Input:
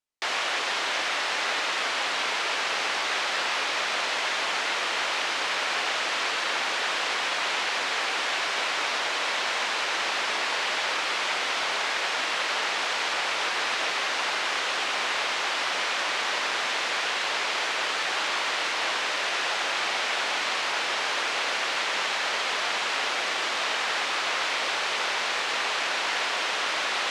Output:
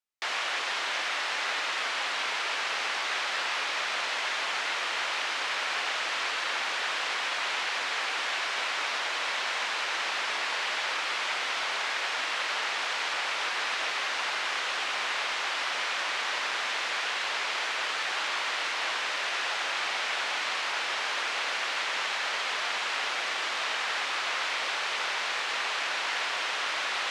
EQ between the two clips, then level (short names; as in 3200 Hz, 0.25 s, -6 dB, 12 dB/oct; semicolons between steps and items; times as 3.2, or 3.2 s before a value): tilt shelf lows -6 dB, about 900 Hz; high shelf 2300 Hz -8 dB; -3.0 dB